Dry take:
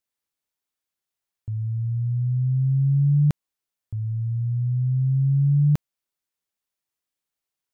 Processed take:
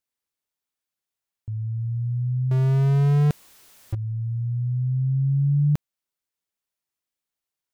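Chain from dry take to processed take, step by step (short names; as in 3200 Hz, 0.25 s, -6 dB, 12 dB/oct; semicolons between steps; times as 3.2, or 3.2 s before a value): 2.51–3.95 power-law curve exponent 0.5; gain -1.5 dB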